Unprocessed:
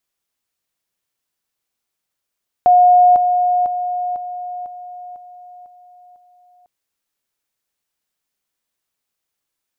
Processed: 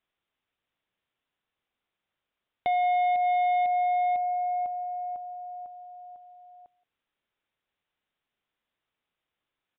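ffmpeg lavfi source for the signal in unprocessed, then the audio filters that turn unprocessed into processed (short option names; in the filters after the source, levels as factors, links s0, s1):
-f lavfi -i "aevalsrc='pow(10,(-6.5-6*floor(t/0.5))/20)*sin(2*PI*719*t)':d=4:s=44100"
-af "acompressor=threshold=0.141:ratio=16,aresample=8000,asoftclip=type=tanh:threshold=0.075,aresample=44100,aecho=1:1:174:0.0841"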